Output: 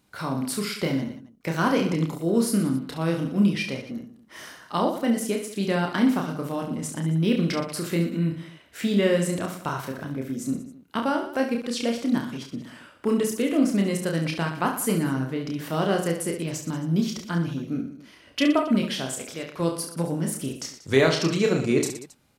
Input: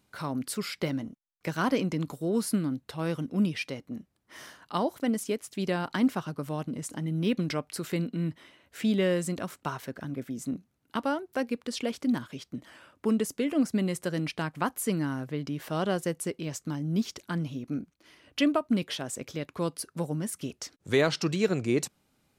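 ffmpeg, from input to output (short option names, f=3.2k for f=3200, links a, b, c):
-filter_complex "[0:a]asettb=1/sr,asplit=3[a][b][c];[a]atrim=end=19.074[d];[b]atrim=start=19.07:end=19.6,asetpts=PTS-STARTPTS,afade=t=in:d=0.004:c=qsin,afade=t=out:st=0.526:d=0.004:c=qsin,lowshelf=f=330:g=-9.5[e];[c]atrim=start=19.596[f];[d][e]acrossfade=d=0.004:c1=hsin:c2=qsin[g];[g][f]acrossfade=d=0.004:c1=qsin:c2=hsin,aecho=1:1:30|69|119.7|185.6|271.3:0.631|0.398|0.251|0.158|0.1,volume=3dB"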